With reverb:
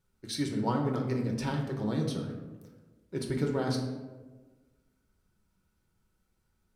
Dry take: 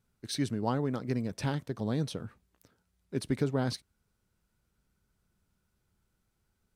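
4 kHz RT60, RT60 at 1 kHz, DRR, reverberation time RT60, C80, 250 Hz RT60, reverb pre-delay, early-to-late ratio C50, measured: 0.65 s, 1.1 s, 0.5 dB, 1.3 s, 7.0 dB, 1.6 s, 3 ms, 5.0 dB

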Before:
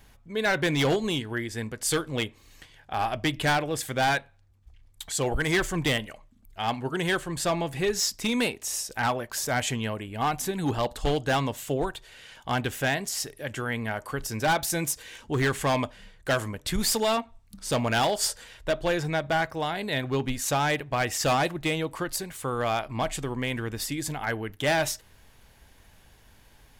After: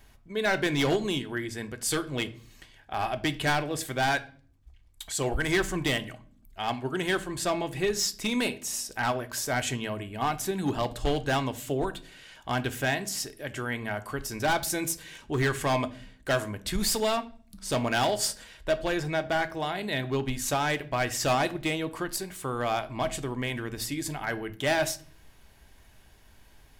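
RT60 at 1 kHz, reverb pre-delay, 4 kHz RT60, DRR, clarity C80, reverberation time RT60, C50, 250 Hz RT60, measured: 0.40 s, 3 ms, 0.40 s, 10.0 dB, 22.5 dB, 0.45 s, 18.5 dB, 0.85 s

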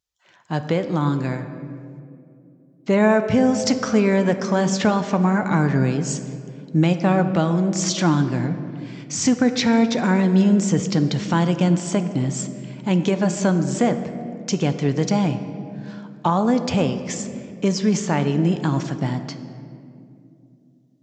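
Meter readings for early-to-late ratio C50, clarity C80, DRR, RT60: 10.0 dB, 10.5 dB, 8.5 dB, 2.5 s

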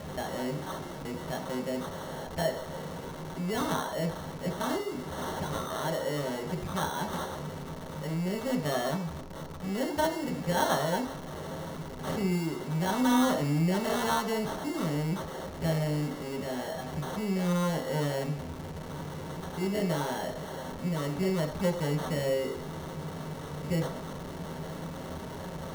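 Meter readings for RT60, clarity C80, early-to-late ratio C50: 0.55 s, 13.5 dB, 10.0 dB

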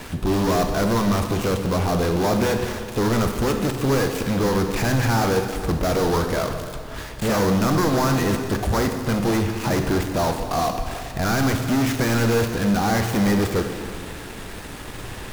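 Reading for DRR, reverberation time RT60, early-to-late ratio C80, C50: 5.0 dB, 2.2 s, 7.0 dB, 6.0 dB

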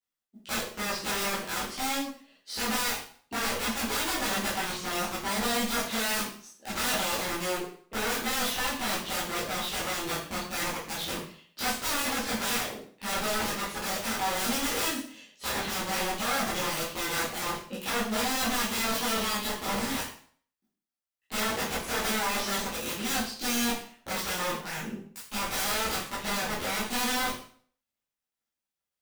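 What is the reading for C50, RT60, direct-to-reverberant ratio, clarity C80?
4.5 dB, 0.50 s, -10.5 dB, 9.0 dB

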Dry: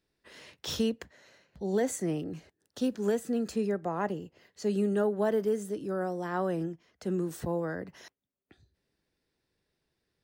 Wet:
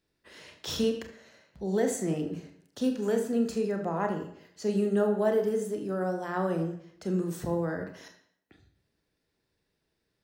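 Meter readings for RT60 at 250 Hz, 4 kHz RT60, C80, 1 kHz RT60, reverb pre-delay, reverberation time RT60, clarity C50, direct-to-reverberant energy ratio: 0.70 s, 0.55 s, 11.5 dB, 0.65 s, 29 ms, 0.65 s, 8.5 dB, 4.0 dB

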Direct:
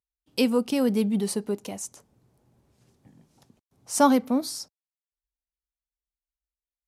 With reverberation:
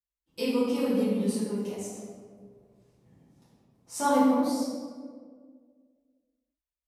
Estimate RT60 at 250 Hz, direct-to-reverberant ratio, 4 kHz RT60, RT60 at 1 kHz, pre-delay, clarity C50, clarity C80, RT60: 2.3 s, -11.5 dB, 0.95 s, 1.5 s, 4 ms, -1.5 dB, 0.5 dB, 1.8 s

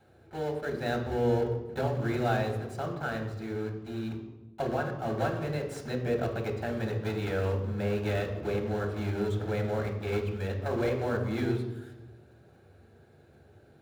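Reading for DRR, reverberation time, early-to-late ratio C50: 2.0 dB, 1.1 s, 6.5 dB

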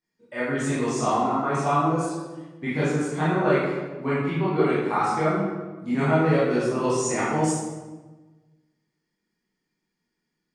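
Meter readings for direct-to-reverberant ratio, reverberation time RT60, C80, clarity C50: -11.0 dB, 1.2 s, 1.5 dB, -1.5 dB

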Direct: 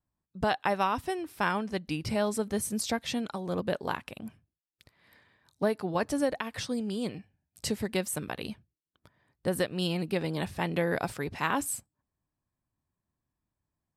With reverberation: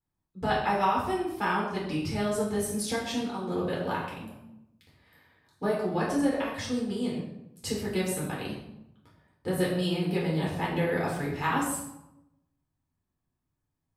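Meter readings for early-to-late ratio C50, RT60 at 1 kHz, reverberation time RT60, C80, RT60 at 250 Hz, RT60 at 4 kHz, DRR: 3.0 dB, 0.80 s, 0.85 s, 6.0 dB, 1.1 s, 0.55 s, -5.5 dB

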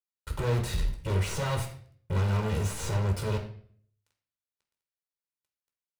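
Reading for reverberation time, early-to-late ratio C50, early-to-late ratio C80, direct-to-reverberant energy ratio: 0.55 s, 8.5 dB, 12.5 dB, 2.5 dB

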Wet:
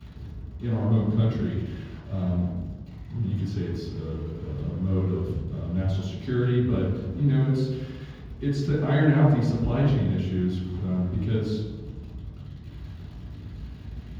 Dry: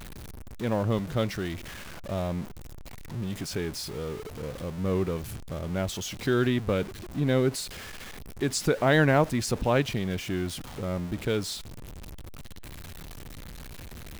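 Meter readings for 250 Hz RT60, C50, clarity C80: 1.6 s, 0.0 dB, 3.5 dB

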